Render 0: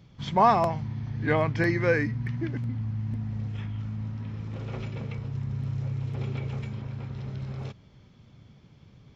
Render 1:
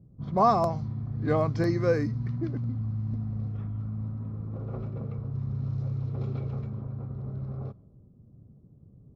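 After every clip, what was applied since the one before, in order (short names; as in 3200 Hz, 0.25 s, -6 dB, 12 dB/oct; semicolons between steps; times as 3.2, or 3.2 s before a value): low-pass opened by the level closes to 380 Hz, open at -22.5 dBFS; band shelf 2300 Hz -13 dB 1.3 oct; notch 900 Hz, Q 5.1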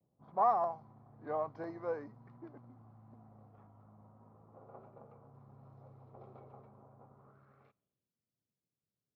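half-wave gain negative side -3 dB; band-pass sweep 830 Hz -> 5100 Hz, 7.09–8.18; vibrato 0.44 Hz 34 cents; gain -2.5 dB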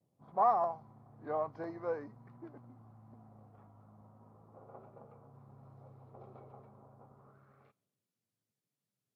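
gain +1 dB; Vorbis 64 kbps 32000 Hz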